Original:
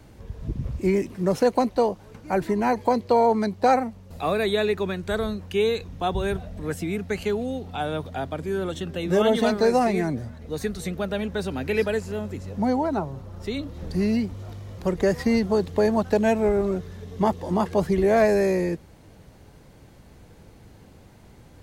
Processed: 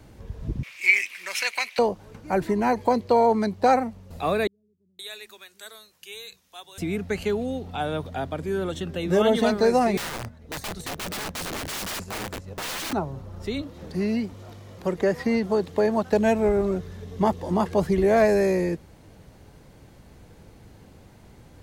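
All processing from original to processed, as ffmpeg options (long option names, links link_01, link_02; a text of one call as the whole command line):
ffmpeg -i in.wav -filter_complex "[0:a]asettb=1/sr,asplit=3[link_01][link_02][link_03];[link_01]atrim=end=0.634[link_04];[link_02]atrim=start=0.63:end=1.79,asetpts=PTS-STARTPTS,afade=type=in:duration=0.004:curve=qsin,afade=type=out:start_time=1.156:duration=0.004:curve=qsin,acontrast=90,highpass=frequency=2300:width_type=q:width=5.3[link_05];[link_03]atrim=start=1.786[link_06];[link_04][link_05]acrossfade=duration=0.004:curve1=hsin:curve2=qsin[link_07];[link_07][link_06]acrossfade=duration=0.004:curve1=qsin:curve2=hsin,asettb=1/sr,asplit=3[link_08][link_09][link_10];[link_08]atrim=end=4.474[link_11];[link_09]atrim=start=4.47:end=6.78,asetpts=PTS-STARTPTS,afade=type=in:duration=0.004:curve=qsin,afade=type=out:start_time=2.306:duration=0.004:curve=qsin,aderivative,acrossover=split=220[link_12][link_13];[link_13]adelay=520[link_14];[link_12][link_14]amix=inputs=2:normalize=0,atrim=end_sample=101871[link_15];[link_10]atrim=start=6.776[link_16];[link_11][link_15]acrossfade=duration=0.004:curve1=hsin:curve2=qsin[link_17];[link_17][link_16]acrossfade=duration=0.004:curve1=qsin:curve2=hsin,asettb=1/sr,asplit=3[link_18][link_19][link_20];[link_18]atrim=end=9.974[link_21];[link_19]atrim=start=9.97:end=12.93,asetpts=PTS-STARTPTS,afade=type=in:duration=0.004:curve=qsin,afade=type=out:start_time=2.956:duration=0.004:curve=qsin,agate=range=-7dB:threshold=-35dB:ratio=16:release=100:detection=peak,aeval=exprs='(mod(22.4*val(0)+1,2)-1)/22.4':channel_layout=same[link_22];[link_20]atrim=start=12.926[link_23];[link_21][link_22]acrossfade=duration=0.004:curve1=hsin:curve2=qsin[link_24];[link_24][link_23]acrossfade=duration=0.004:curve1=qsin:curve2=hsin,asettb=1/sr,asplit=3[link_25][link_26][link_27];[link_25]atrim=end=13.624[link_28];[link_26]atrim=start=13.62:end=16.13,asetpts=PTS-STARTPTS,afade=type=in:duration=0.004:curve=qsin,afade=type=out:start_time=2.506:duration=0.004:curve=qsin,acrossover=split=3700[link_29][link_30];[link_30]acompressor=threshold=-47dB:ratio=4:attack=1:release=60[link_31];[link_29][link_31]amix=inputs=2:normalize=0,highpass=frequency=200:poles=1[link_32];[link_27]atrim=start=16.126[link_33];[link_28][link_32]acrossfade=duration=0.004:curve1=hsin:curve2=qsin[link_34];[link_34][link_33]acrossfade=duration=0.004:curve1=qsin:curve2=hsin" out.wav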